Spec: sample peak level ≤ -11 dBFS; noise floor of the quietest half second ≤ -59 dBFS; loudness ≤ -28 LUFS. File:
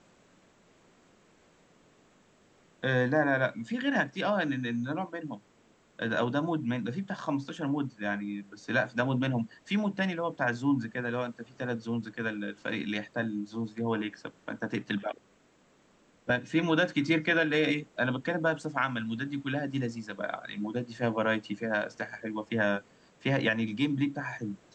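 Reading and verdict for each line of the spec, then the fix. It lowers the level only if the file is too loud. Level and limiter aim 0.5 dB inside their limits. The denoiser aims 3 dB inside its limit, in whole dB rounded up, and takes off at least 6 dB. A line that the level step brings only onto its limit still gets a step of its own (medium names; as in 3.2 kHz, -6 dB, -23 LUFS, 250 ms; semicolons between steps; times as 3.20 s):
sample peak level -12.0 dBFS: pass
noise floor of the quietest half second -64 dBFS: pass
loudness -31.0 LUFS: pass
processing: none needed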